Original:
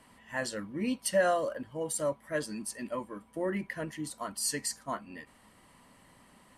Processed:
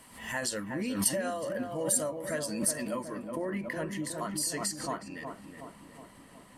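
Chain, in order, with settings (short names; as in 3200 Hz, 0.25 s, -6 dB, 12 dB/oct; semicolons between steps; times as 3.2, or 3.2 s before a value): compressor 10:1, threshold -33 dBFS, peak gain reduction 12.5 dB; high shelf 5500 Hz +11 dB, from 3.15 s +2.5 dB; darkening echo 0.367 s, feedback 63%, low-pass 1300 Hz, level -5.5 dB; backwards sustainer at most 89 dB/s; gain +2.5 dB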